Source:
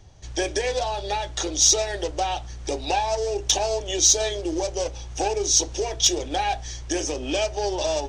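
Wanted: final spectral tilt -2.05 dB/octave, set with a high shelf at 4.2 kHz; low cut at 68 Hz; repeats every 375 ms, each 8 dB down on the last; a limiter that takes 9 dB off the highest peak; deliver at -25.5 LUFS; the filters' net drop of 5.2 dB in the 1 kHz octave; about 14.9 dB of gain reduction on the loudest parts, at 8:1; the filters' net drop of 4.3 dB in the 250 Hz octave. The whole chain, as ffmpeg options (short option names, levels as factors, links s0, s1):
-af "highpass=68,equalizer=f=250:t=o:g=-6.5,equalizer=f=1000:t=o:g=-7,highshelf=f=4200:g=4.5,acompressor=threshold=0.0501:ratio=8,alimiter=limit=0.0891:level=0:latency=1,aecho=1:1:375|750|1125|1500|1875:0.398|0.159|0.0637|0.0255|0.0102,volume=1.88"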